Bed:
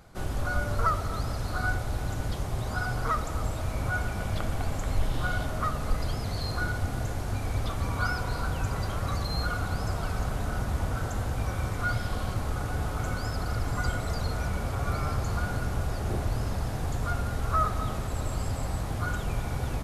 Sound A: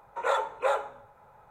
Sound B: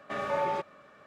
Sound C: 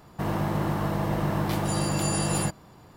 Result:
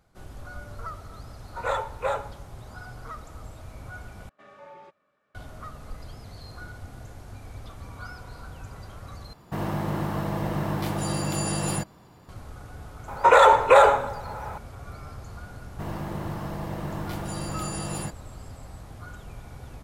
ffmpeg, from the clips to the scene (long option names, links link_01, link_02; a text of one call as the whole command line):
ffmpeg -i bed.wav -i cue0.wav -i cue1.wav -i cue2.wav -filter_complex "[1:a]asplit=2[link_01][link_02];[3:a]asplit=2[link_03][link_04];[0:a]volume=-11.5dB[link_05];[link_02]alimiter=level_in=24dB:limit=-1dB:release=50:level=0:latency=1[link_06];[link_05]asplit=3[link_07][link_08][link_09];[link_07]atrim=end=4.294[link_10];[2:a]atrim=end=1.06,asetpts=PTS-STARTPTS,volume=-17.5dB[link_11];[link_08]atrim=start=5.346:end=9.334[link_12];[link_03]atrim=end=2.96,asetpts=PTS-STARTPTS,volume=-1.5dB[link_13];[link_09]atrim=start=12.286[link_14];[link_01]atrim=end=1.5,asetpts=PTS-STARTPTS,volume=-1dB,afade=type=in:duration=0.004:curve=hsin,afade=type=out:start_time=1.496:duration=0.004:curve=hsin,adelay=1400[link_15];[link_06]atrim=end=1.5,asetpts=PTS-STARTPTS,volume=-4.5dB,afade=type=in:duration=0.004:curve=hsin,afade=type=out:start_time=1.496:duration=0.004:curve=hsin,adelay=13080[link_16];[link_04]atrim=end=2.96,asetpts=PTS-STARTPTS,volume=-6.5dB,afade=type=in:duration=0.004:curve=hsin,afade=type=out:start_time=2.956:duration=0.004:curve=hsin,adelay=15600[link_17];[link_10][link_11]acrossfade=duration=0.004:curve1=hsin:curve2=hsin[link_18];[link_18][link_12]acrossfade=duration=0.004:curve1=hsin:curve2=hsin[link_19];[link_19][link_13]acrossfade=duration=0.004:curve1=hsin:curve2=hsin[link_20];[link_20][link_14]acrossfade=duration=0.004:curve1=hsin:curve2=hsin[link_21];[link_21][link_15][link_16][link_17]amix=inputs=4:normalize=0" out.wav